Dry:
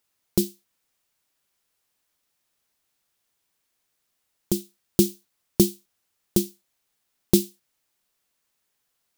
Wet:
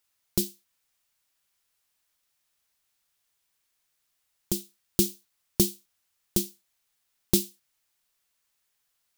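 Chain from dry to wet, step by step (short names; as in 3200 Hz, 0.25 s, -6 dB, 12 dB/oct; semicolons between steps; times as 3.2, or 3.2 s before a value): bell 300 Hz -7.5 dB 2.7 oct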